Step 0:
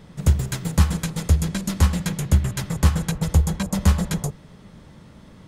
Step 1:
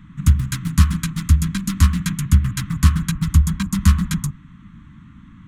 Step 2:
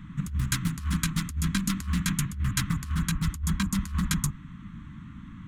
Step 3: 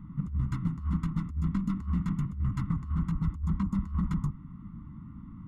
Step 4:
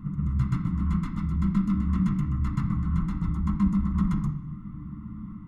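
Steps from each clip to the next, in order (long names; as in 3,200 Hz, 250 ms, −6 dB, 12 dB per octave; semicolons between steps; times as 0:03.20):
adaptive Wiener filter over 9 samples; elliptic band-stop filter 280–1,100 Hz, stop band 60 dB; level +4 dB
dynamic equaliser 140 Hz, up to −6 dB, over −28 dBFS, Q 1.1; compressor whose output falls as the input rises −24 dBFS, ratio −1; level −4 dB
Savitzky-Golay smoothing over 65 samples; level −1.5 dB
backwards echo 127 ms −3 dB; on a send at −2 dB: convolution reverb RT60 0.70 s, pre-delay 3 ms; on the sum: level +1 dB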